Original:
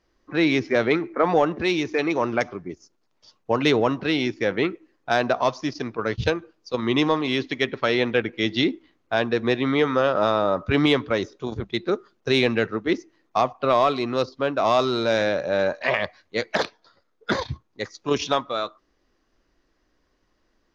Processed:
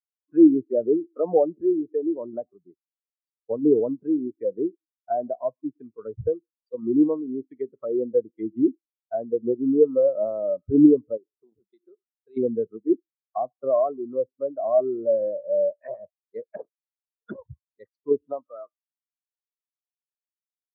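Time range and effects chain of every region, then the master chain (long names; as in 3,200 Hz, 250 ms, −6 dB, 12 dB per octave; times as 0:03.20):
0:11.17–0:12.37: downward compressor 8 to 1, threshold −29 dBFS + parametric band 90 Hz −10.5 dB 1.6 octaves
whole clip: treble cut that deepens with the level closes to 860 Hz, closed at −20 dBFS; every bin expanded away from the loudest bin 2.5 to 1; level +3.5 dB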